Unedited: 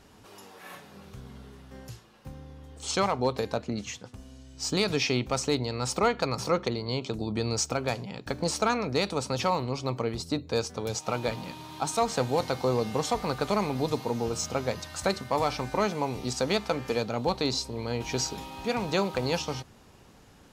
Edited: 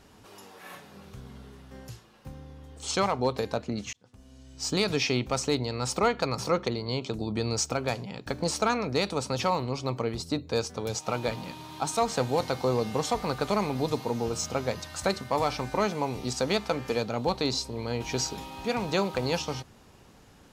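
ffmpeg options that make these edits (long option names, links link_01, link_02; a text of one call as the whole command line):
ffmpeg -i in.wav -filter_complex "[0:a]asplit=2[link_01][link_02];[link_01]atrim=end=3.93,asetpts=PTS-STARTPTS,afade=type=out:start_time=3.926:duration=0.004:curve=hsin[link_03];[link_02]atrim=start=3.93,asetpts=PTS-STARTPTS,afade=type=in:duration=0.6[link_04];[link_03][link_04]concat=n=2:v=0:a=1" out.wav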